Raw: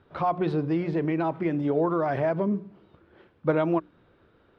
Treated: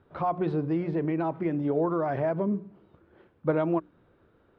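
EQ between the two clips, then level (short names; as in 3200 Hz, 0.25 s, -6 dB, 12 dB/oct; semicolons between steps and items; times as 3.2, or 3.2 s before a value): high shelf 2400 Hz -9 dB; -1.5 dB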